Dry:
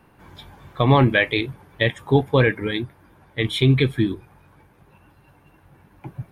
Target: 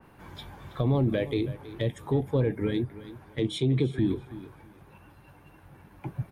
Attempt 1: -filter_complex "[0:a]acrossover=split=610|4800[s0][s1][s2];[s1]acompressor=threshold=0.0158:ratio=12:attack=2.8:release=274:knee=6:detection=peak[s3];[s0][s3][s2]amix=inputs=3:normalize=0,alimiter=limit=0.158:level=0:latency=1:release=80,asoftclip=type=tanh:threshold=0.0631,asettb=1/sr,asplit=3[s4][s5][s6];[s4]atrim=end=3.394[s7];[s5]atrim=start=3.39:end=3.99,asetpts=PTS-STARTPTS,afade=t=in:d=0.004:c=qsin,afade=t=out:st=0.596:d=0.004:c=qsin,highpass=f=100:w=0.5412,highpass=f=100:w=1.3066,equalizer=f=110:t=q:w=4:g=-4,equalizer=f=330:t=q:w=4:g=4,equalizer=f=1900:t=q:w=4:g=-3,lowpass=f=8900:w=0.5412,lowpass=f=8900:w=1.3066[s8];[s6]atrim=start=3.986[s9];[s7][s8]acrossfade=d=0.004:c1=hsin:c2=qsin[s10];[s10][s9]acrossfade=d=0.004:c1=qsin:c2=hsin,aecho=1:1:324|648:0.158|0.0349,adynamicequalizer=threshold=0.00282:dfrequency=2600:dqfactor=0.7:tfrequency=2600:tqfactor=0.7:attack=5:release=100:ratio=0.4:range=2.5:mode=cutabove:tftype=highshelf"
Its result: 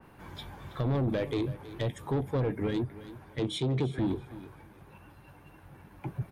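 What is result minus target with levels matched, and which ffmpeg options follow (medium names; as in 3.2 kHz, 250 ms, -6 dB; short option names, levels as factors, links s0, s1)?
saturation: distortion +17 dB
-filter_complex "[0:a]acrossover=split=610|4800[s0][s1][s2];[s1]acompressor=threshold=0.0158:ratio=12:attack=2.8:release=274:knee=6:detection=peak[s3];[s0][s3][s2]amix=inputs=3:normalize=0,alimiter=limit=0.158:level=0:latency=1:release=80,asoftclip=type=tanh:threshold=0.237,asettb=1/sr,asplit=3[s4][s5][s6];[s4]atrim=end=3.394[s7];[s5]atrim=start=3.39:end=3.99,asetpts=PTS-STARTPTS,afade=t=in:d=0.004:c=qsin,afade=t=out:st=0.596:d=0.004:c=qsin,highpass=f=100:w=0.5412,highpass=f=100:w=1.3066,equalizer=f=110:t=q:w=4:g=-4,equalizer=f=330:t=q:w=4:g=4,equalizer=f=1900:t=q:w=4:g=-3,lowpass=f=8900:w=0.5412,lowpass=f=8900:w=1.3066[s8];[s6]atrim=start=3.986[s9];[s7][s8]acrossfade=d=0.004:c1=hsin:c2=qsin[s10];[s10][s9]acrossfade=d=0.004:c1=qsin:c2=hsin,aecho=1:1:324|648:0.158|0.0349,adynamicequalizer=threshold=0.00282:dfrequency=2600:dqfactor=0.7:tfrequency=2600:tqfactor=0.7:attack=5:release=100:ratio=0.4:range=2.5:mode=cutabove:tftype=highshelf"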